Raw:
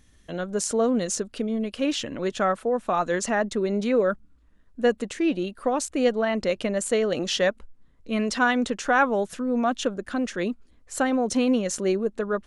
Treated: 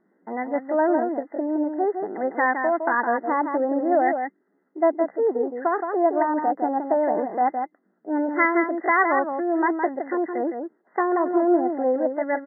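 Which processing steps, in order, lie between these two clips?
outdoor echo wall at 28 m, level -6 dB; FFT band-pass 120–1500 Hz; pitch shift +5.5 st; gain +1.5 dB

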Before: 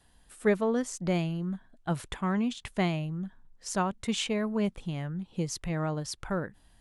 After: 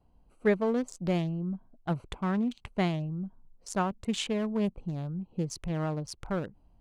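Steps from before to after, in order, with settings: Wiener smoothing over 25 samples

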